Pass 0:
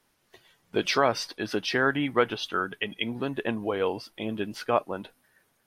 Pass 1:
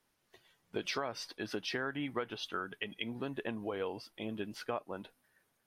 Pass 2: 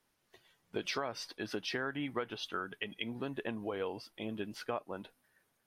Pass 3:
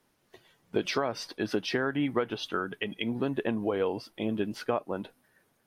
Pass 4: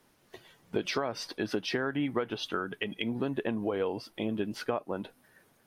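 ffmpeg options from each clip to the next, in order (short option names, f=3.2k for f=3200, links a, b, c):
-af "acompressor=threshold=-25dB:ratio=6,volume=-7.5dB"
-af anull
-af "equalizer=f=250:w=0.31:g=6,volume=4dB"
-af "acompressor=threshold=-45dB:ratio=1.5,volume=5dB"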